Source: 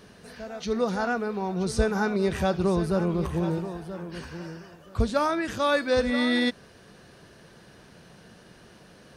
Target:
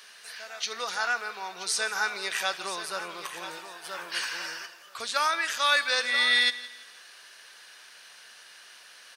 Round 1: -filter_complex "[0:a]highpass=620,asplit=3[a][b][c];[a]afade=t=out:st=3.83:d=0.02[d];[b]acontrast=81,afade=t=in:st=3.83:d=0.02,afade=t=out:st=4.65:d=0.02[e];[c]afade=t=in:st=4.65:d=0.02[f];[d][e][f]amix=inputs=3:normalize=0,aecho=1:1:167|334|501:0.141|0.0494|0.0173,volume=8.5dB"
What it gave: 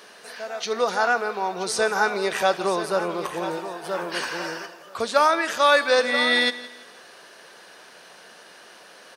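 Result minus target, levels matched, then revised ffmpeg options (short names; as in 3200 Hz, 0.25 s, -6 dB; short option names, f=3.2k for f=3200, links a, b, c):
500 Hz band +11.0 dB
-filter_complex "[0:a]highpass=1.7k,asplit=3[a][b][c];[a]afade=t=out:st=3.83:d=0.02[d];[b]acontrast=81,afade=t=in:st=3.83:d=0.02,afade=t=out:st=4.65:d=0.02[e];[c]afade=t=in:st=4.65:d=0.02[f];[d][e][f]amix=inputs=3:normalize=0,aecho=1:1:167|334|501:0.141|0.0494|0.0173,volume=8.5dB"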